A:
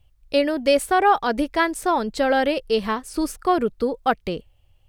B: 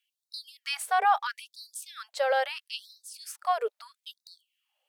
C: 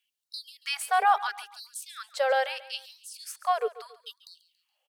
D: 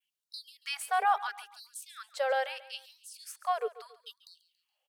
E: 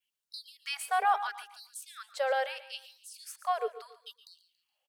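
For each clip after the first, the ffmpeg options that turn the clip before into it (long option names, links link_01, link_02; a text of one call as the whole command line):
ffmpeg -i in.wav -af "afftfilt=real='re*gte(b*sr/1024,410*pow(3800/410,0.5+0.5*sin(2*PI*0.76*pts/sr)))':imag='im*gte(b*sr/1024,410*pow(3800/410,0.5+0.5*sin(2*PI*0.76*pts/sr)))':win_size=1024:overlap=0.75,volume=-5.5dB" out.wav
ffmpeg -i in.wav -af "aecho=1:1:140|280|420:0.141|0.0551|0.0215,volume=1dB" out.wav
ffmpeg -i in.wav -af "adynamicequalizer=threshold=0.00251:dfrequency=4600:dqfactor=1.8:tfrequency=4600:tqfactor=1.8:attack=5:release=100:ratio=0.375:range=2:mode=cutabove:tftype=bell,volume=-4.5dB" out.wav
ffmpeg -i in.wav -af "aecho=1:1:118:0.15" out.wav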